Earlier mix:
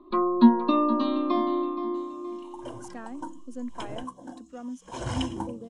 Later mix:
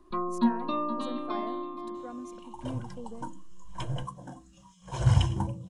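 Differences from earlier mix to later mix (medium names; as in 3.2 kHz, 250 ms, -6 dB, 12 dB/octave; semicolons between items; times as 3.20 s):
speech: entry -2.50 s; first sound -5.5 dB; master: add resonant low shelf 200 Hz +8.5 dB, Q 3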